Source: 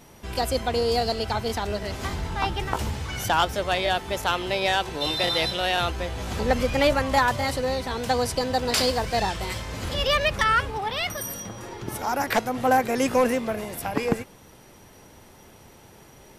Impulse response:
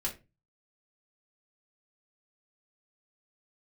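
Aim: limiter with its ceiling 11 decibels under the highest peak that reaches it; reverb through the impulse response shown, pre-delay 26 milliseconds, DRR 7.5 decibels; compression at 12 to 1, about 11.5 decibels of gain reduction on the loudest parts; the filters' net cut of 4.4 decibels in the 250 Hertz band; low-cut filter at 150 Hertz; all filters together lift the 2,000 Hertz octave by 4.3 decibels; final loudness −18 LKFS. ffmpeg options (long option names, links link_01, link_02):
-filter_complex "[0:a]highpass=150,equalizer=frequency=250:width_type=o:gain=-4.5,equalizer=frequency=2000:width_type=o:gain=5.5,acompressor=threshold=-26dB:ratio=12,alimiter=limit=-23.5dB:level=0:latency=1,asplit=2[link_01][link_02];[1:a]atrim=start_sample=2205,adelay=26[link_03];[link_02][link_03]afir=irnorm=-1:irlink=0,volume=-10.5dB[link_04];[link_01][link_04]amix=inputs=2:normalize=0,volume=14.5dB"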